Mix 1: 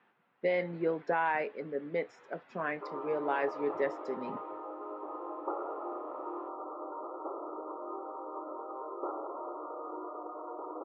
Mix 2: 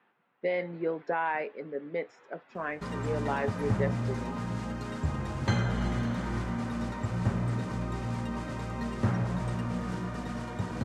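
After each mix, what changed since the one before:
background: remove brick-wall FIR band-pass 290–1400 Hz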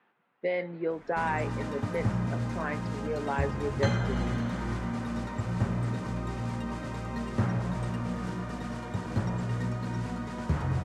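background: entry -1.65 s

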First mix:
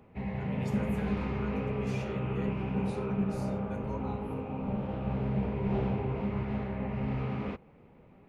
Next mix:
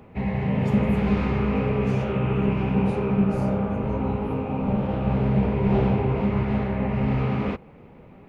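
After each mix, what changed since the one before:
background +9.5 dB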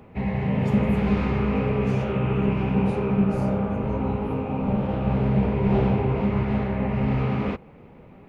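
no change

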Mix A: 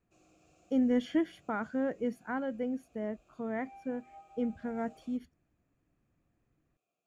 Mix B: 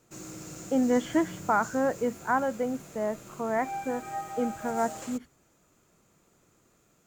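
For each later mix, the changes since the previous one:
background: remove vowel filter a; master: add peaking EQ 980 Hz +14.5 dB 1.7 oct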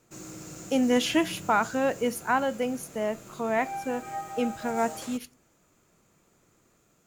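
speech: remove Savitzky-Golay filter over 41 samples; reverb: on, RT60 0.40 s

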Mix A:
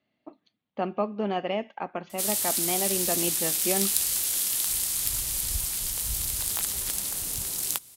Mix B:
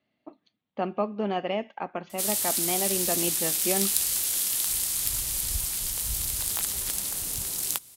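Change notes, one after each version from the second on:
no change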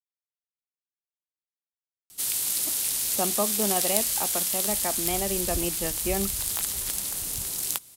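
speech: entry +2.40 s

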